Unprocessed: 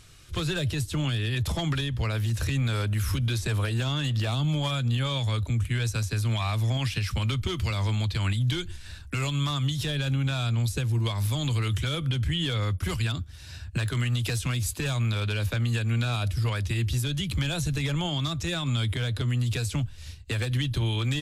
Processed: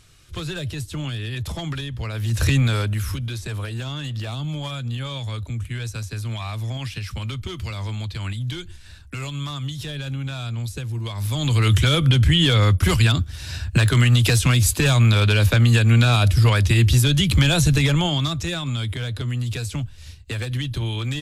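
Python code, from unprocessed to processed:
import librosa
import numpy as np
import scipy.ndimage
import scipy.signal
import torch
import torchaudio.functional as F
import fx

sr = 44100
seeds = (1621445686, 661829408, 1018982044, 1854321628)

y = fx.gain(x, sr, db=fx.line((2.13, -1.0), (2.48, 10.0), (3.27, -2.0), (11.07, -2.0), (11.71, 11.0), (17.73, 11.0), (18.74, 1.0)))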